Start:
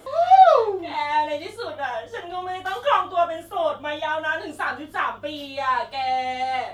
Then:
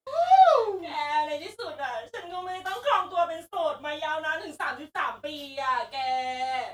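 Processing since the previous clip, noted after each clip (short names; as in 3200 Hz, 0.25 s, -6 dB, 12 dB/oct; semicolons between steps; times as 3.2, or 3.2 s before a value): gate -36 dBFS, range -41 dB; tone controls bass -4 dB, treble +5 dB; gain -4.5 dB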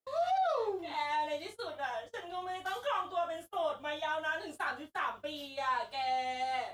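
limiter -19.5 dBFS, peak gain reduction 11.5 dB; gain -5 dB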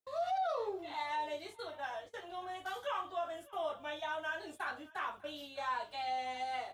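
echo 0.597 s -23 dB; gain -4 dB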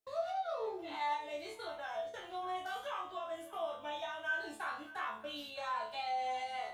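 compressor 2:1, threshold -43 dBFS, peak gain reduction 6.5 dB; resonator bank D2 fifth, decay 0.38 s; gain +14.5 dB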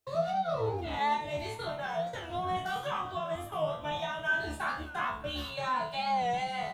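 octaver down 2 oct, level +4 dB; speakerphone echo 0.4 s, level -15 dB; record warp 45 rpm, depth 100 cents; gain +6.5 dB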